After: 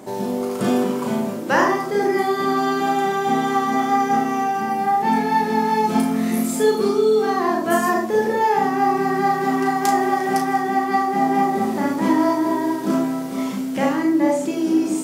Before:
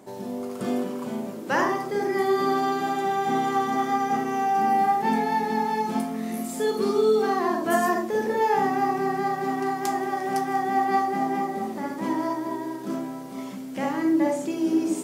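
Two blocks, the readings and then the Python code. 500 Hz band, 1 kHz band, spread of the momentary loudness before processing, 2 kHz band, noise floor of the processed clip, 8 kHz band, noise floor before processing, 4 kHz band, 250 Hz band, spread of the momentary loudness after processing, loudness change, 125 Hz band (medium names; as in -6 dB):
+5.0 dB, +4.5 dB, 9 LU, +6.0 dB, -26 dBFS, +6.5 dB, -36 dBFS, +6.0 dB, +6.5 dB, 4 LU, +5.5 dB, +7.0 dB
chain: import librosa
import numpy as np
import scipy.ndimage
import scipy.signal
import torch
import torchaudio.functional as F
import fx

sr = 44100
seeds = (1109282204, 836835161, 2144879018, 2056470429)

y = fx.rider(x, sr, range_db=4, speed_s=0.5)
y = fx.doubler(y, sr, ms=35.0, db=-5.5)
y = F.gain(torch.from_numpy(y), 5.0).numpy()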